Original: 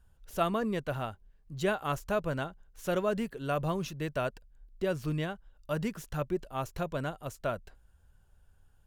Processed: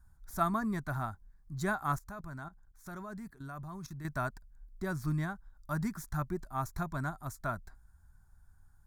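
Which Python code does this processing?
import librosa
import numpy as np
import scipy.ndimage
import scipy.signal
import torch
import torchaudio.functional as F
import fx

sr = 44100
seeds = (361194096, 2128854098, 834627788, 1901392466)

y = fx.fixed_phaser(x, sr, hz=1200.0, stages=4)
y = fx.level_steps(y, sr, step_db=15, at=(1.96, 4.05))
y = y * 10.0 ** (2.0 / 20.0)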